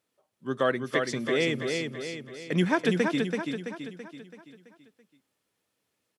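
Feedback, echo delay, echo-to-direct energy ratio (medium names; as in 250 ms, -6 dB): 49%, 332 ms, -3.5 dB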